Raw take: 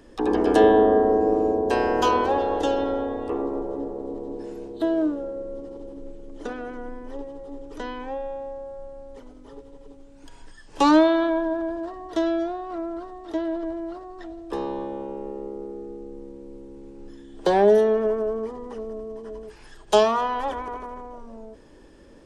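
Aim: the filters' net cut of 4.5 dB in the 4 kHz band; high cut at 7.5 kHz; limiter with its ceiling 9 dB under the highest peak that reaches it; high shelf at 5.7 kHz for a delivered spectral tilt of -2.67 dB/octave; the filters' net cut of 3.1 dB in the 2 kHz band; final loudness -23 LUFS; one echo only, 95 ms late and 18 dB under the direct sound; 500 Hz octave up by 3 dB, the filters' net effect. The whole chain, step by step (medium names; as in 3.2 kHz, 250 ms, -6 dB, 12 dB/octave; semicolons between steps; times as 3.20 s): low-pass 7.5 kHz; peaking EQ 500 Hz +4 dB; peaking EQ 2 kHz -4 dB; peaking EQ 4 kHz -7 dB; treble shelf 5.7 kHz +8 dB; peak limiter -12 dBFS; delay 95 ms -18 dB; trim +1.5 dB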